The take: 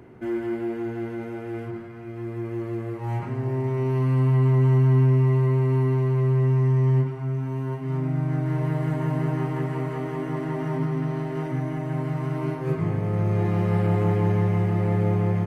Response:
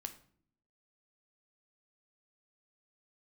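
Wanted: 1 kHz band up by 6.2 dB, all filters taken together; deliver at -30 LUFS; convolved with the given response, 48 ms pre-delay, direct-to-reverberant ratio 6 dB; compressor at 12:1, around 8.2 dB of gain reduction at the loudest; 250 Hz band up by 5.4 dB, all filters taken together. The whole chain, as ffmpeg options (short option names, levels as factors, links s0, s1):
-filter_complex "[0:a]equalizer=f=250:t=o:g=8,equalizer=f=1000:t=o:g=7,acompressor=threshold=0.0891:ratio=12,asplit=2[s0][s1];[1:a]atrim=start_sample=2205,adelay=48[s2];[s1][s2]afir=irnorm=-1:irlink=0,volume=0.708[s3];[s0][s3]amix=inputs=2:normalize=0,volume=0.631"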